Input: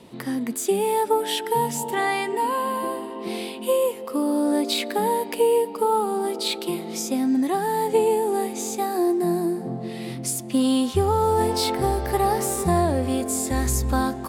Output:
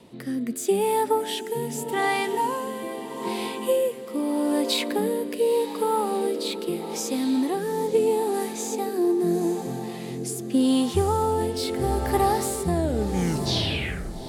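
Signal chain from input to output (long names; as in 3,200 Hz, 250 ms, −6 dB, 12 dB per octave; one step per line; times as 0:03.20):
turntable brake at the end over 1.57 s
feedback delay with all-pass diffusion 828 ms, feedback 63%, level −12 dB
rotating-speaker cabinet horn 0.8 Hz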